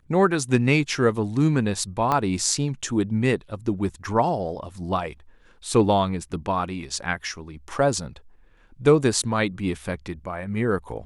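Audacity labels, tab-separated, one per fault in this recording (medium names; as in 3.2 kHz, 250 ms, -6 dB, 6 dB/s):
2.120000	2.120000	pop -10 dBFS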